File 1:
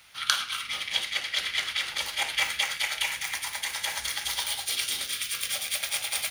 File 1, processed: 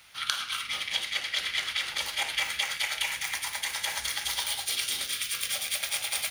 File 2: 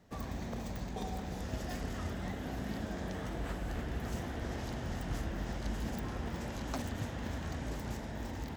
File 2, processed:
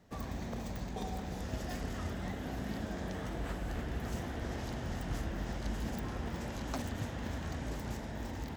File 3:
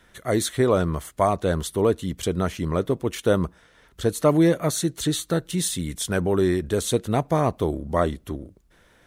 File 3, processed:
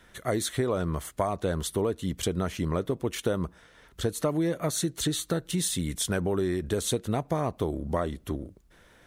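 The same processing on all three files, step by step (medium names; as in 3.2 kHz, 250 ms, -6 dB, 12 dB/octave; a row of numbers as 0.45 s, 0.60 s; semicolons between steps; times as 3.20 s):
compression 6:1, threshold -24 dBFS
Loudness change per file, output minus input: -1.0 LU, 0.0 LU, -6.0 LU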